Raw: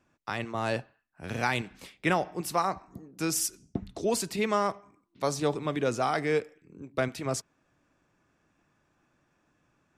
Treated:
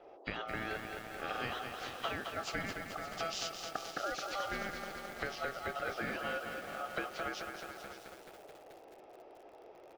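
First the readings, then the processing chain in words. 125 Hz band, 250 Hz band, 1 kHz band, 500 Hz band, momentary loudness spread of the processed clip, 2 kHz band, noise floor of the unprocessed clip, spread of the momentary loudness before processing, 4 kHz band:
-14.0 dB, -13.0 dB, -8.0 dB, -11.0 dB, 17 LU, -3.5 dB, -72 dBFS, 11 LU, -3.0 dB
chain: knee-point frequency compression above 1.9 kHz 1.5:1; Chebyshev band-pass 220–4300 Hz, order 2; compression 10:1, threshold -41 dBFS, peak gain reduction 19 dB; delay 571 ms -13.5 dB; ring modulator 990 Hz; band noise 320–810 Hz -63 dBFS; bit-crushed delay 216 ms, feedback 80%, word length 10-bit, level -5.5 dB; trim +7.5 dB

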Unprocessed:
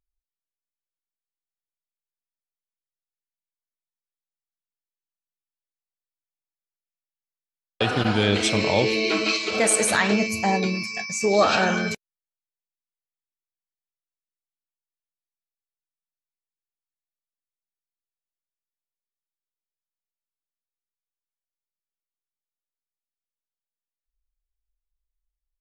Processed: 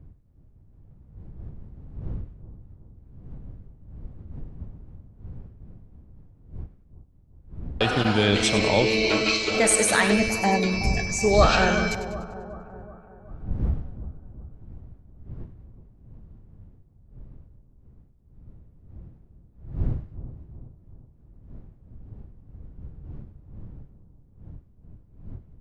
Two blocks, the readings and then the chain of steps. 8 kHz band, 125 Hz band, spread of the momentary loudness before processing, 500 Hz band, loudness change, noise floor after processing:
+0.5 dB, +3.5 dB, 8 LU, +0.5 dB, -1.0 dB, -56 dBFS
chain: wind noise 93 Hz -36 dBFS; two-band feedback delay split 1.2 kHz, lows 374 ms, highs 98 ms, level -12 dB

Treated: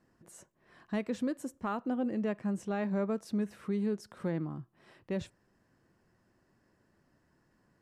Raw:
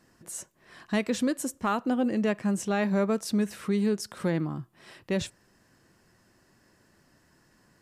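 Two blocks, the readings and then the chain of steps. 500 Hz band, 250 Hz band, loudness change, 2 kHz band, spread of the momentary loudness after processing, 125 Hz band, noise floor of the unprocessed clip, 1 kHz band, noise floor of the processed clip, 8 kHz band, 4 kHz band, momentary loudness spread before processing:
-6.5 dB, -6.0 dB, -6.0 dB, -10.0 dB, 7 LU, -6.0 dB, -65 dBFS, -7.5 dB, -73 dBFS, -16.0 dB, -14.0 dB, 13 LU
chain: treble shelf 2.4 kHz -11 dB; trim -6 dB

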